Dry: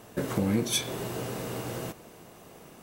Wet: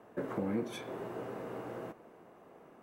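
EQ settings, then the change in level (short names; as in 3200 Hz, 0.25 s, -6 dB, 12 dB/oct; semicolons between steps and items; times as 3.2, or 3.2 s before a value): three-band isolator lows -12 dB, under 210 Hz, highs -20 dB, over 2000 Hz; -4.5 dB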